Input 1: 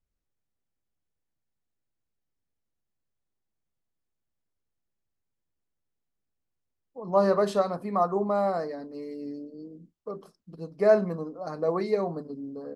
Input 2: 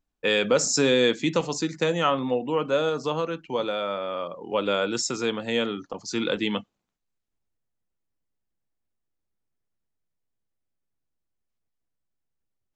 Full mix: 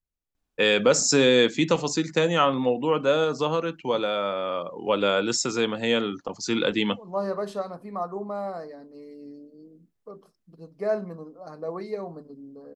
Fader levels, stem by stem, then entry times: -6.0 dB, +2.0 dB; 0.00 s, 0.35 s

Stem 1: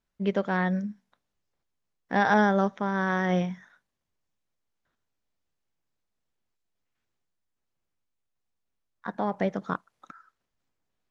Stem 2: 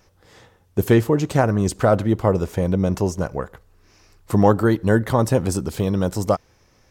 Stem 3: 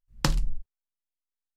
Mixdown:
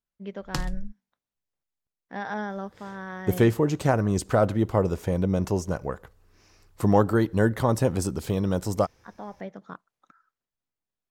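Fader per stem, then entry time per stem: -10.5 dB, -4.5 dB, -5.0 dB; 0.00 s, 2.50 s, 0.30 s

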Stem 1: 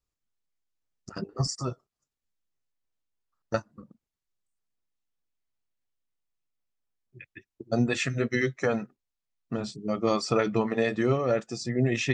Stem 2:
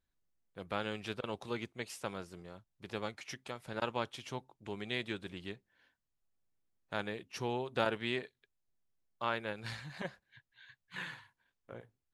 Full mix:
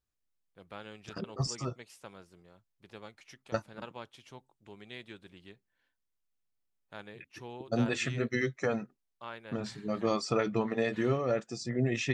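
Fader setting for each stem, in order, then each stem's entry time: -4.5 dB, -8.5 dB; 0.00 s, 0.00 s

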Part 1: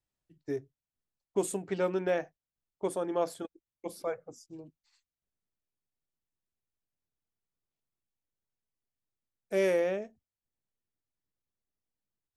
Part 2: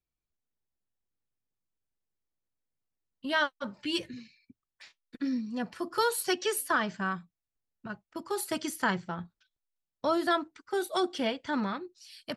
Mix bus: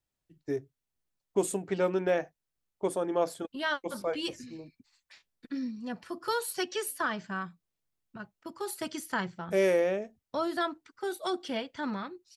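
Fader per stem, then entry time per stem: +2.0 dB, -3.5 dB; 0.00 s, 0.30 s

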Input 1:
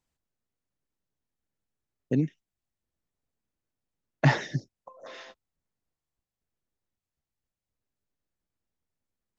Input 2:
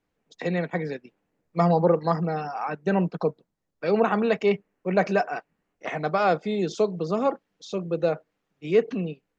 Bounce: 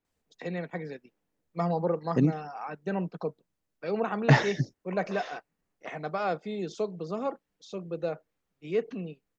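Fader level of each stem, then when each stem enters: +1.5 dB, -8.0 dB; 0.05 s, 0.00 s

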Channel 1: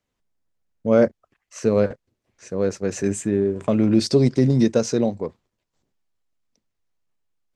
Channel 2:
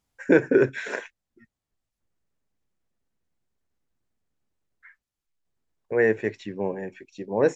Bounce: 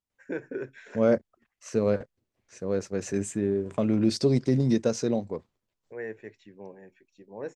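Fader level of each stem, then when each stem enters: -6.0 dB, -16.0 dB; 0.10 s, 0.00 s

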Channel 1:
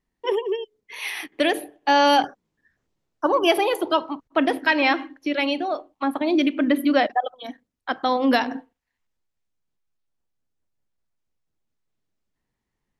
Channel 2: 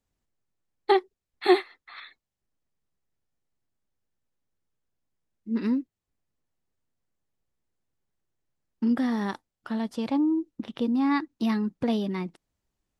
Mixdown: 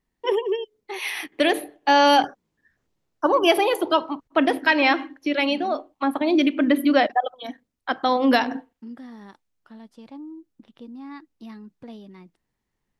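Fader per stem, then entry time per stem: +1.0 dB, -14.5 dB; 0.00 s, 0.00 s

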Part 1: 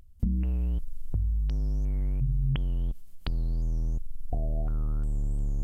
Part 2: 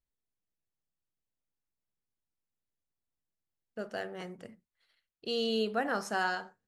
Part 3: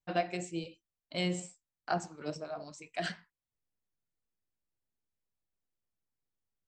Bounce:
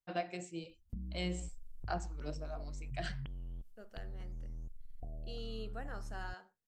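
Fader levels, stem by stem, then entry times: -16.0 dB, -15.5 dB, -6.0 dB; 0.70 s, 0.00 s, 0.00 s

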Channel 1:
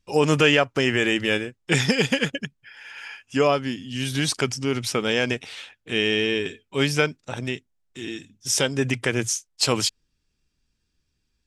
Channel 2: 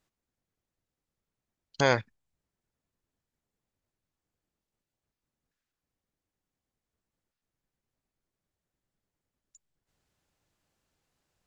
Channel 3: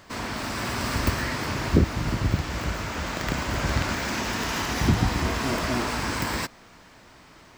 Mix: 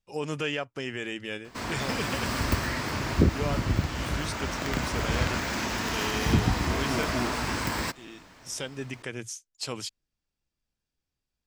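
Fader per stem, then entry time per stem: -13.0 dB, -14.0 dB, -2.0 dB; 0.00 s, 0.00 s, 1.45 s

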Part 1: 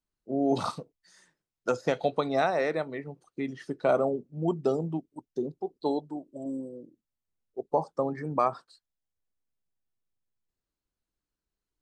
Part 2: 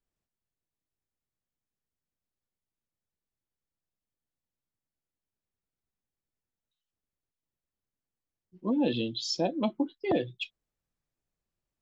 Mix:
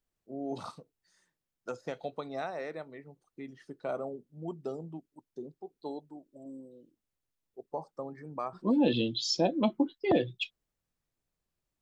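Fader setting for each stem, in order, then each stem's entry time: -11.0 dB, +1.5 dB; 0.00 s, 0.00 s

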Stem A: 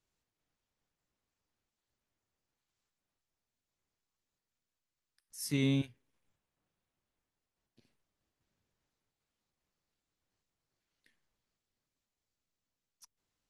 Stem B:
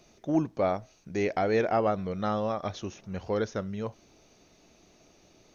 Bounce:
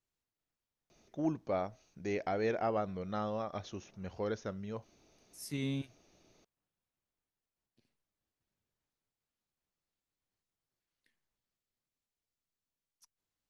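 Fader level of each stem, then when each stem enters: -6.0 dB, -7.5 dB; 0.00 s, 0.90 s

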